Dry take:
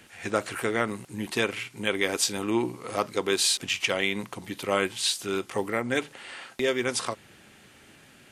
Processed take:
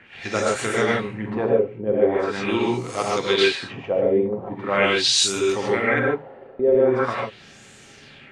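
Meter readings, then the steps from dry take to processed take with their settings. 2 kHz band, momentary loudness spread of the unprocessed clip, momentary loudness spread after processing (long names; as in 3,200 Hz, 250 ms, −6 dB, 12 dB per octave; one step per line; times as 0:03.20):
+4.5 dB, 11 LU, 10 LU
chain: reverb whose tail is shaped and stops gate 170 ms rising, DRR −4 dB
auto-filter low-pass sine 0.42 Hz 480–7,400 Hz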